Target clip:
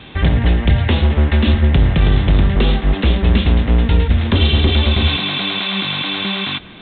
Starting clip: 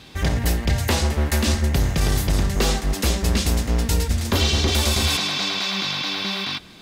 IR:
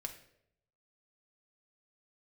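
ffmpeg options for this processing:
-filter_complex "[0:a]acrossover=split=350|3000[a][b][c];[b]acompressor=threshold=-32dB:ratio=6[d];[a][d][c]amix=inputs=3:normalize=0,volume=8dB" -ar 8000 -c:a pcm_mulaw

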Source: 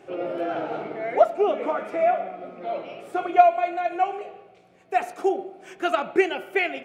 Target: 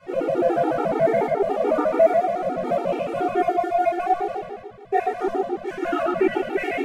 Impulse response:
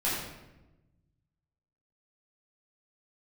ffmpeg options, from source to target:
-filter_complex "[0:a]lowpass=f=1.6k:p=1,acompressor=threshold=-33dB:ratio=6,aeval=exprs='sgn(val(0))*max(abs(val(0))-0.00168,0)':c=same[a];[1:a]atrim=start_sample=2205,asetrate=32193,aresample=44100[b];[a][b]afir=irnorm=-1:irlink=0,afftfilt=real='re*gt(sin(2*PI*7*pts/sr)*(1-2*mod(floor(b*sr/1024/240),2)),0)':imag='im*gt(sin(2*PI*7*pts/sr)*(1-2*mod(floor(b*sr/1024/240),2)),0)':win_size=1024:overlap=0.75,volume=7dB"

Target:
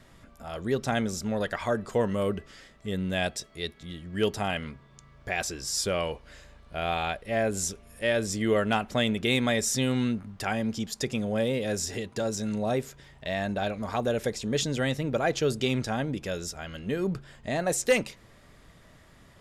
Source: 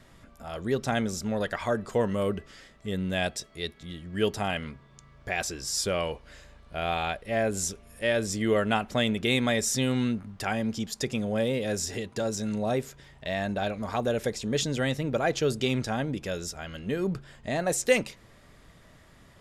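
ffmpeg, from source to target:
-af "volume=14dB,asoftclip=hard,volume=-14dB"

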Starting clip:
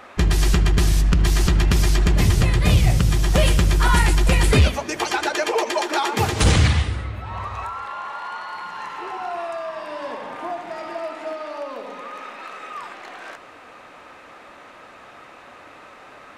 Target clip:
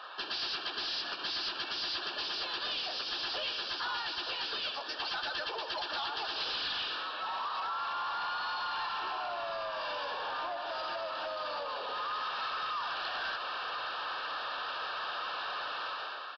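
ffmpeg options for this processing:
-filter_complex "[0:a]dynaudnorm=f=160:g=7:m=12.5dB,highpass=f=260:w=0.5412,highpass=f=260:w=1.3066,acompressor=threshold=-25dB:ratio=8,asplit=2[a][b];[b]asplit=2[c][d];[c]adelay=416,afreqshift=81,volume=-24dB[e];[d]adelay=832,afreqshift=162,volume=-33.1dB[f];[e][f]amix=inputs=2:normalize=0[g];[a][g]amix=inputs=2:normalize=0,asplit=2[h][i];[i]highpass=f=720:p=1,volume=18dB,asoftclip=type=tanh:threshold=-10dB[j];[h][j]amix=inputs=2:normalize=0,lowpass=f=1.2k:p=1,volume=-6dB,asuperstop=centerf=2200:order=12:qfactor=2.5,highshelf=f=3.1k:g=6.5,asplit=2[k][l];[l]asetrate=37084,aresample=44100,atempo=1.18921,volume=-6dB[m];[k][m]amix=inputs=2:normalize=0,aderivative,aresample=11025,asoftclip=type=tanh:threshold=-33.5dB,aresample=44100,volume=3.5dB"

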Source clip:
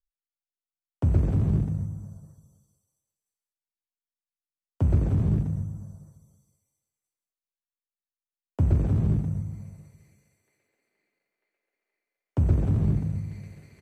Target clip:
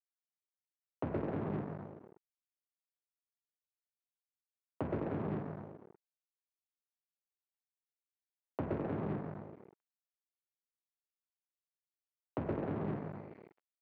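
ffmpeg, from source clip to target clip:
-af "aemphasis=mode=reproduction:type=75fm,aeval=exprs='sgn(val(0))*max(abs(val(0))-0.0119,0)':c=same,highpass=390,lowpass=2k,volume=1.5dB"

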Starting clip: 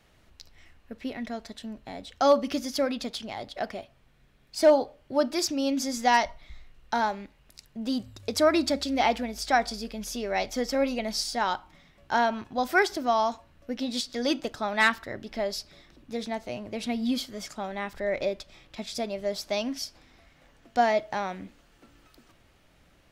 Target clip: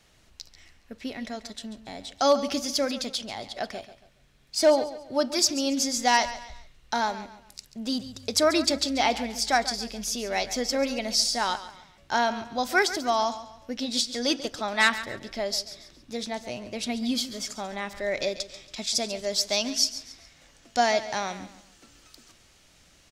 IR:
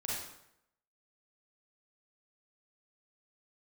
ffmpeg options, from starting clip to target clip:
-af "asetnsamples=n=441:p=0,asendcmd='18 equalizer g 15',equalizer=f=6.5k:t=o:w=1.9:g=9,aecho=1:1:139|278|417:0.2|0.0698|0.0244,volume=-1dB"

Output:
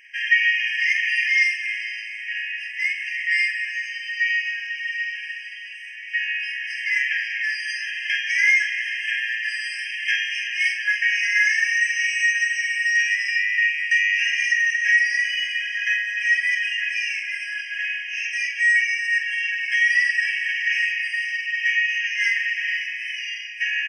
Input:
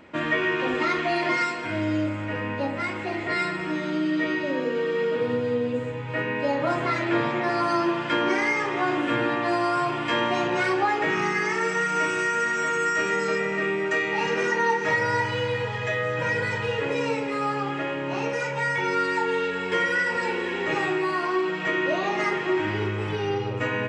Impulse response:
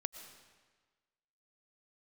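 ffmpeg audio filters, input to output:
-filter_complex "[0:a]asplit=2[a][b];[b]adelay=46,volume=-7dB[c];[a][c]amix=inputs=2:normalize=0,afftfilt=real='re*eq(mod(floor(b*sr/1024/1600),2),1)':imag='im*eq(mod(floor(b*sr/1024/1600),2),1)':win_size=1024:overlap=0.75,volume=8.5dB"

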